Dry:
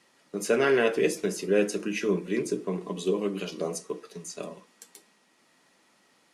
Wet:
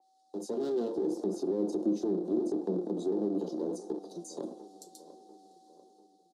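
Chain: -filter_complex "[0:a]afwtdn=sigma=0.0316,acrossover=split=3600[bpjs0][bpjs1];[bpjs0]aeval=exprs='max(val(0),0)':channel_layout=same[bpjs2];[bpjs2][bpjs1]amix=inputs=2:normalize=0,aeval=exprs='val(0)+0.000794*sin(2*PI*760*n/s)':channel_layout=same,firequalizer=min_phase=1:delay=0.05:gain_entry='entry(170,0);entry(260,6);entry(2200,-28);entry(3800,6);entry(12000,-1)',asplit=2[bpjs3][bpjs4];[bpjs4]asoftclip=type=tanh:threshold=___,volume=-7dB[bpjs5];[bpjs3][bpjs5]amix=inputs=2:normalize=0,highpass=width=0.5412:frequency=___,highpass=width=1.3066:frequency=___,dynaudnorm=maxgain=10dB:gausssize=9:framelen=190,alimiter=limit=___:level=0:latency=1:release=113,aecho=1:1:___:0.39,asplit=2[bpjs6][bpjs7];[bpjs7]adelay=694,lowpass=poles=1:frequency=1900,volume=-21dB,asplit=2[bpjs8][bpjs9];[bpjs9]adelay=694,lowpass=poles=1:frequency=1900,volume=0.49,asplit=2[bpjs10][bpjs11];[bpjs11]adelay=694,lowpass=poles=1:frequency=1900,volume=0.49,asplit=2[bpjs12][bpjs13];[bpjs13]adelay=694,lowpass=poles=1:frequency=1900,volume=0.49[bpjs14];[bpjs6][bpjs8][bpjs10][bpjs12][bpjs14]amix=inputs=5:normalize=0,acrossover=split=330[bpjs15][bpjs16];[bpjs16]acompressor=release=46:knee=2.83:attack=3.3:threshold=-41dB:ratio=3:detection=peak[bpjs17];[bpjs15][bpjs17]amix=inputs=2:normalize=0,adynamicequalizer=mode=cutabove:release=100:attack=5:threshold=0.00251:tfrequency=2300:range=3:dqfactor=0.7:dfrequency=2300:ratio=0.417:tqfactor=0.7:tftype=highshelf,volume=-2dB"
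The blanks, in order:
-28dB, 250, 250, -15dB, 5.8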